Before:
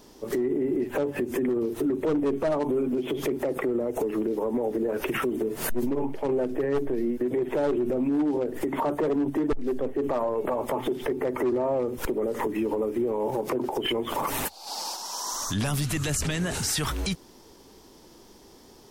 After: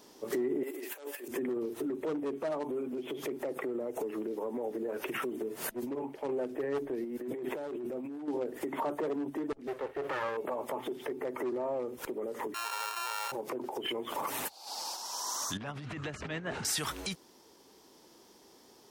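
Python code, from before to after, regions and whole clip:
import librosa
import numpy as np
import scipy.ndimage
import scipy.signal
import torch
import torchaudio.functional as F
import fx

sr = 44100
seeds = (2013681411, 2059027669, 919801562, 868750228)

y = fx.chain(x, sr, fx.highpass(hz=280.0, slope=24),
    fx.tilt_eq(slope=4.5),
    fx.over_compress(threshold_db=-35.0, ratio=-0.5), at=(0.63, 1.28))
y = fx.chain(y, sr, fx.high_shelf(hz=11000.0, db=4.5),
    fx.over_compress(threshold_db=-31.0, ratio=-1.0), at=(7.04, 8.28))
y = fx.chain(y, sr, fx.lower_of_two(delay_ms=2.2),
    fx.peak_eq(hz=2000.0, db=7.0, octaves=2.0), at=(9.67, 10.37))
y = fx.chain(y, sr, fx.sample_sort(block=32),
    fx.highpass(hz=720.0, slope=24),
    fx.env_flatten(amount_pct=70), at=(12.54, 13.32))
y = fx.chain(y, sr, fx.lowpass(hz=2200.0, slope=12),
    fx.over_compress(threshold_db=-29.0, ratio=-0.5), at=(15.57, 16.65))
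y = fx.highpass(y, sr, hz=310.0, slope=6)
y = fx.rider(y, sr, range_db=10, speed_s=2.0)
y = y * librosa.db_to_amplitude(-6.5)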